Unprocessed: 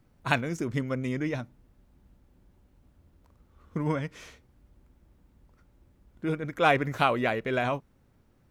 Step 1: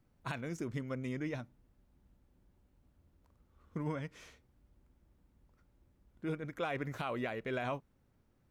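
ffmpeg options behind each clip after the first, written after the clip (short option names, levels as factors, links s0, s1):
-af "alimiter=limit=0.126:level=0:latency=1:release=115,volume=0.398"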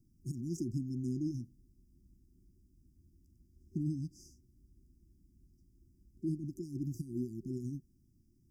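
-af "afftfilt=real='re*(1-between(b*sr/4096,380,4700))':imag='im*(1-between(b*sr/4096,380,4700))':win_size=4096:overlap=0.75,volume=1.5"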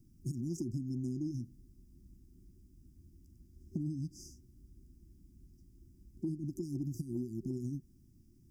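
-af "acompressor=threshold=0.01:ratio=6,volume=2"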